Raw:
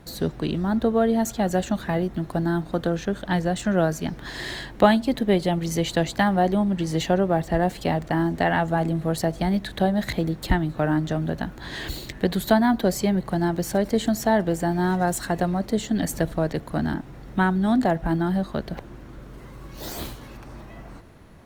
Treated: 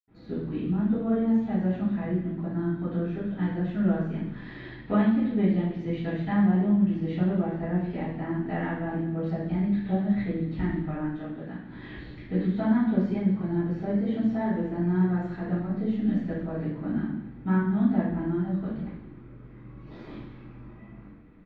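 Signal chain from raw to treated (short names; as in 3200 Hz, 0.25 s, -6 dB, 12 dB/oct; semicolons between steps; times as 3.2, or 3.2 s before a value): 10.78–11.55 low shelf 320 Hz -10 dB; flange 1.2 Hz, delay 7.4 ms, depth 8.8 ms, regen -64%; air absorption 310 m; echo 0.234 s -20.5 dB; reverb RT60 0.85 s, pre-delay 76 ms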